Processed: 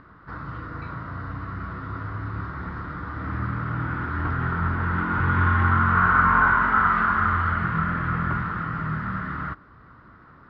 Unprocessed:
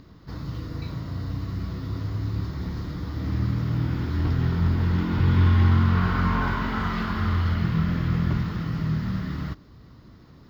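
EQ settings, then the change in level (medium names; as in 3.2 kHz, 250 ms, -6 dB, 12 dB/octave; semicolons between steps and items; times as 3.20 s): resonant low-pass 1.4 kHz, resonance Q 3.6; tilt shelf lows -5.5 dB, about 800 Hz; +1.0 dB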